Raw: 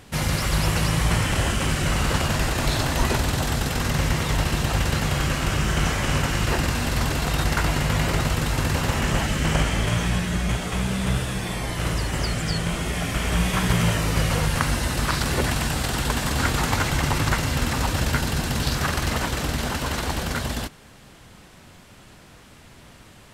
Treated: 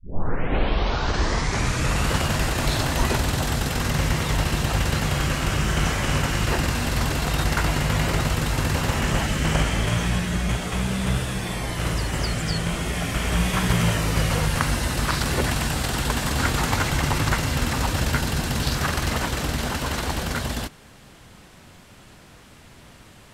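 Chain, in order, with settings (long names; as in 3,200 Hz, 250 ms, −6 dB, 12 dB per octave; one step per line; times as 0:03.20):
turntable start at the beginning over 2.09 s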